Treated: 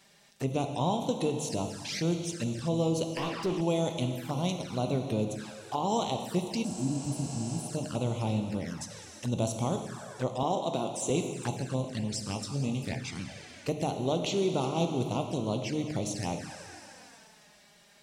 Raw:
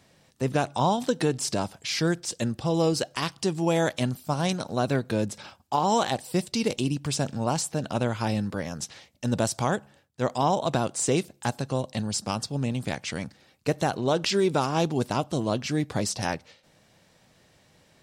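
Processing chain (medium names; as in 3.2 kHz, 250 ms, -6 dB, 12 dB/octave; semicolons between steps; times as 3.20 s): plate-style reverb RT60 2.5 s, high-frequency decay 0.95×, DRR 4.5 dB; touch-sensitive flanger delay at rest 5.3 ms, full sweep at -23 dBFS; 3.17–3.61 s: overdrive pedal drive 22 dB, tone 1.1 kHz, clips at -17 dBFS; 6.67–7.64 s: spectral replace 350–8900 Hz after; 10.43–11.10 s: high-pass 200 Hz 12 dB/octave; 12.20–12.93 s: doubling 21 ms -7.5 dB; tape noise reduction on one side only encoder only; trim -4.5 dB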